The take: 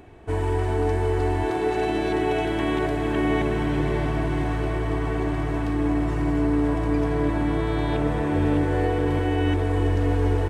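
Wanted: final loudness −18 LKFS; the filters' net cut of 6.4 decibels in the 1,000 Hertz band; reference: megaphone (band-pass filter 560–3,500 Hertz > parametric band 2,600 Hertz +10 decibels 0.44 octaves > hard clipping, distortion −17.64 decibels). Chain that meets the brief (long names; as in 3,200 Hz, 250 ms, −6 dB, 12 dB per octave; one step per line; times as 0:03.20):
band-pass filter 560–3,500 Hz
parametric band 1,000 Hz −8 dB
parametric band 2,600 Hz +10 dB 0.44 octaves
hard clipping −26 dBFS
level +14 dB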